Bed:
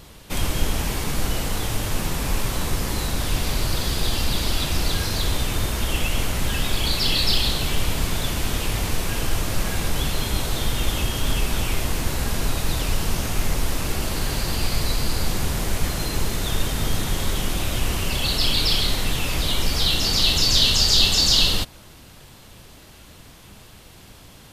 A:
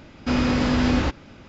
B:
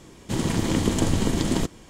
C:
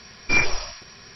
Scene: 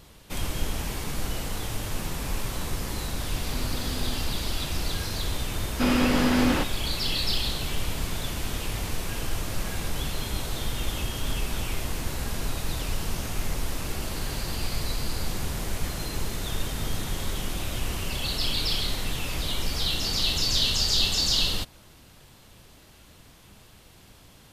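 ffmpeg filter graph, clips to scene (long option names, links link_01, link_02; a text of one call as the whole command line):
ffmpeg -i bed.wav -i cue0.wav -filter_complex "[1:a]asplit=2[link_01][link_02];[0:a]volume=-6.5dB[link_03];[link_01]acrusher=bits=7:mix=0:aa=0.000001[link_04];[link_02]highpass=170[link_05];[link_04]atrim=end=1.48,asetpts=PTS-STARTPTS,volume=-17.5dB,afade=type=in:duration=0.004:curve=hsin,afade=type=out:start_time=1.476:duration=0.004:curve=hsin,adelay=3230[link_06];[link_05]atrim=end=1.48,asetpts=PTS-STARTPTS,volume=-0.5dB,afade=type=in:duration=0.004:curve=hsin,afade=type=out:start_time=1.476:duration=0.004:curve=hsin,adelay=243873S[link_07];[link_03][link_06][link_07]amix=inputs=3:normalize=0" out.wav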